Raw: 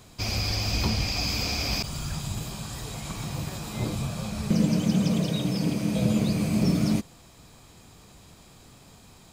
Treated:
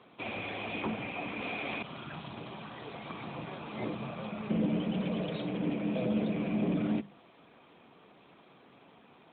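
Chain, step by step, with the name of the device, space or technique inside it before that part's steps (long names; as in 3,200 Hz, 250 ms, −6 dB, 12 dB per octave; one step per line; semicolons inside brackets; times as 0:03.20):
mains-hum notches 50/100/150/200 Hz
0:00.82–0:01.41: Bessel low-pass filter 2,600 Hz, order 8
0:04.81–0:05.53: dynamic equaliser 260 Hz, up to −4 dB, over −34 dBFS, Q 1.2
telephone (band-pass filter 260–3,500 Hz; soft clipping −21 dBFS, distortion −21 dB; AMR narrowband 12.2 kbit/s 8,000 Hz)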